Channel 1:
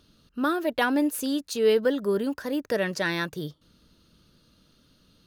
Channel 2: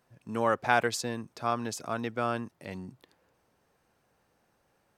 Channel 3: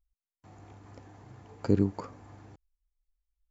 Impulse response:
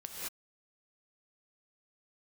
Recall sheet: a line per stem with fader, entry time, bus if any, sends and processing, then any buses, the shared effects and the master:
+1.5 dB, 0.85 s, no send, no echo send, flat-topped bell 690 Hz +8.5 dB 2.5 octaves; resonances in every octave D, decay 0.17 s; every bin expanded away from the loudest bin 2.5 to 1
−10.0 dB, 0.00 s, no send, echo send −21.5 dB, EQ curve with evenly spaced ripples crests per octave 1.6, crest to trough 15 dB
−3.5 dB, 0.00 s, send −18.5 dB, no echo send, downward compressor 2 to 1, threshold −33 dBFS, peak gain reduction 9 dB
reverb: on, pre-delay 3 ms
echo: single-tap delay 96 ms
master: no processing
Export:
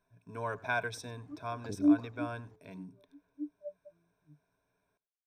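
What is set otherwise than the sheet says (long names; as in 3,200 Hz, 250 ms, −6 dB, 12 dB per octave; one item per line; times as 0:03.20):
stem 1: missing flat-topped bell 690 Hz +8.5 dB 2.5 octaves
stem 3 −3.5 dB → −11.5 dB
master: extra high-shelf EQ 4,300 Hz −6 dB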